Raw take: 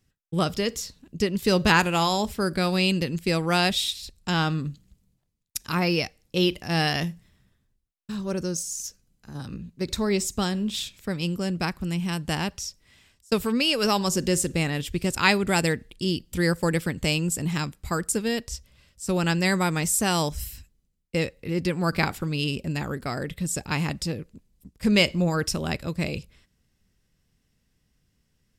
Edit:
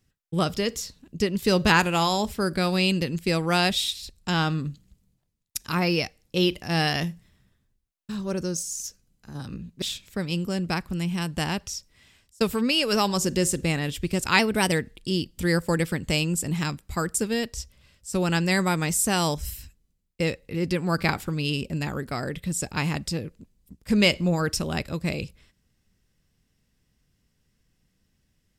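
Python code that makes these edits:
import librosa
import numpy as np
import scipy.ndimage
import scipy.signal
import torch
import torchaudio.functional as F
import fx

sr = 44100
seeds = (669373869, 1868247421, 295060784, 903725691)

y = fx.edit(x, sr, fx.cut(start_s=9.82, length_s=0.91),
    fx.speed_span(start_s=15.3, length_s=0.36, speed=1.1), tone=tone)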